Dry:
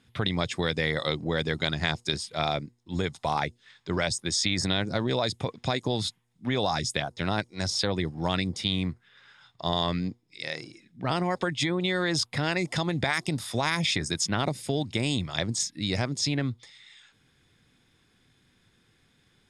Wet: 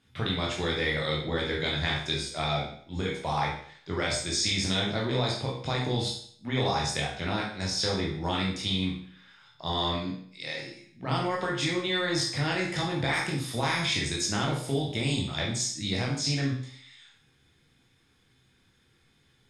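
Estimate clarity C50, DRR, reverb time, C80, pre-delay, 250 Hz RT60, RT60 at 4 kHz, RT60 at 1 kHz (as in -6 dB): 3.5 dB, -3.5 dB, 0.55 s, 7.5 dB, 15 ms, 0.60 s, 0.55 s, 0.55 s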